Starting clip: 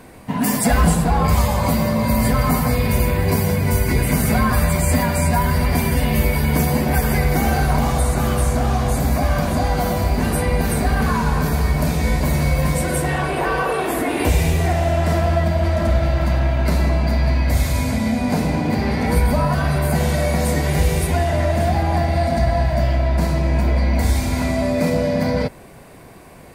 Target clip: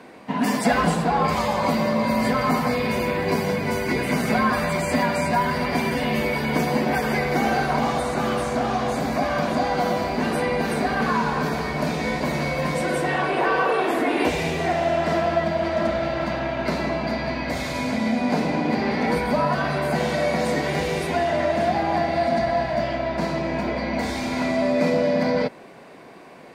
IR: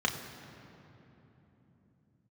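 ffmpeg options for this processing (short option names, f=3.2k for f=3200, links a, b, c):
-filter_complex "[0:a]acrossover=split=180 5900:gain=0.0708 1 0.141[a][b][c];[a][b][c]amix=inputs=3:normalize=0"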